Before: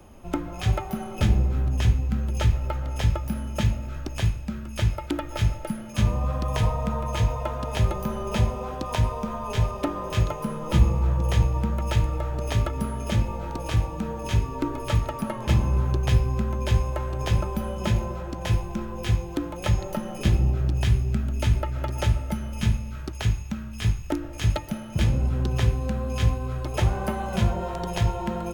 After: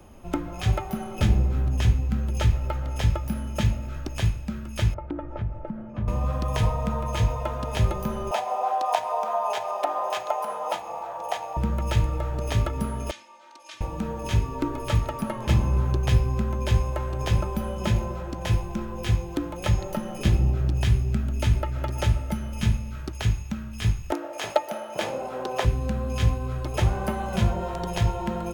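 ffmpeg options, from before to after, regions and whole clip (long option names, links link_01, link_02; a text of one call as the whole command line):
ffmpeg -i in.wav -filter_complex "[0:a]asettb=1/sr,asplit=3[link_01][link_02][link_03];[link_01]atrim=end=4.944[link_04];[link_02]atrim=start=4.94:end=6.08,asetpts=PTS-STARTPTS,afade=type=in:duration=0.004:curve=qsin,afade=type=out:start_time=1.136:duration=0.004:curve=qsin,lowpass=1100,acompressor=threshold=-29dB:ratio=2:attack=3.2:release=140:knee=1:detection=peak[link_05];[link_03]atrim=start=6.076[link_06];[link_04][link_05]acrossfade=duration=0.004:curve1=hsin:curve2=qsin[link_07];[link_07][link_06]acrossfade=duration=0.004:curve1=qsin:curve2=hsin,asettb=1/sr,asplit=3[link_08][link_09][link_10];[link_08]atrim=end=8.314[link_11];[link_09]atrim=start=8.31:end=11.57,asetpts=PTS-STARTPTS,afade=type=in:duration=0.004:curve=qsin,afade=type=out:start_time=3.256:duration=0.004:curve=qsin,acompressor=threshold=-23dB:ratio=2.5:attack=3.2:release=140:knee=1:detection=peak,highpass=frequency=730:width_type=q:width=7.1[link_12];[link_10]atrim=start=11.566[link_13];[link_11][link_12]acrossfade=duration=0.004:curve1=hsin:curve2=qsin[link_14];[link_14][link_13]acrossfade=duration=0.004:curve1=qsin:curve2=hsin,asettb=1/sr,asplit=3[link_15][link_16][link_17];[link_15]atrim=end=13.114[link_18];[link_16]atrim=start=13.11:end=13.81,asetpts=PTS-STARTPTS,afade=type=in:duration=0.004:curve=qsin,afade=type=out:start_time=0.696:duration=0.004:curve=qsin,highpass=240,lowpass=4400,aderivative,aecho=1:1:3.3:0.85,atrim=end_sample=30870[link_19];[link_17]atrim=start=13.806[link_20];[link_18][link_19]acrossfade=duration=0.004:curve1=hsin:curve2=qsin[link_21];[link_21][link_20]acrossfade=duration=0.004:curve1=qsin:curve2=hsin,asettb=1/sr,asplit=3[link_22][link_23][link_24];[link_22]atrim=end=24.124[link_25];[link_23]atrim=start=24.12:end=25.65,asetpts=PTS-STARTPTS,afade=type=in:duration=0.004:curve=qsin,afade=type=out:start_time=1.526:duration=0.004:curve=qsin,highpass=470,equalizer=frequency=650:width=0.83:gain=12.5[link_26];[link_24]atrim=start=25.646[link_27];[link_25][link_26]acrossfade=duration=0.004:curve1=hsin:curve2=qsin[link_28];[link_28][link_27]acrossfade=duration=0.004:curve1=qsin:curve2=hsin" out.wav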